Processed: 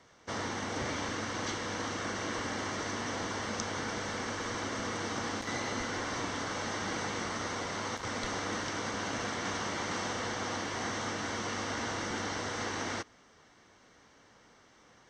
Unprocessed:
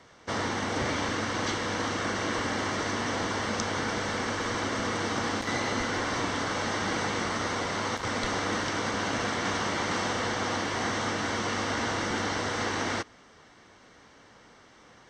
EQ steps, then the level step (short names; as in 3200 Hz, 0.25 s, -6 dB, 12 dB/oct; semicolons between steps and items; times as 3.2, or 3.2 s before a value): bell 6200 Hz +3.5 dB 0.41 oct; -6.0 dB